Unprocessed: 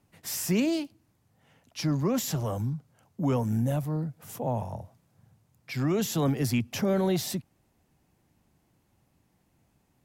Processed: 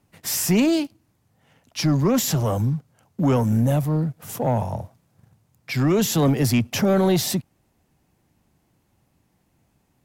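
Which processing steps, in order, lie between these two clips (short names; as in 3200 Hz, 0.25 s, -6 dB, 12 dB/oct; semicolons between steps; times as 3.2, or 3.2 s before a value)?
sample leveller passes 1; gain +5 dB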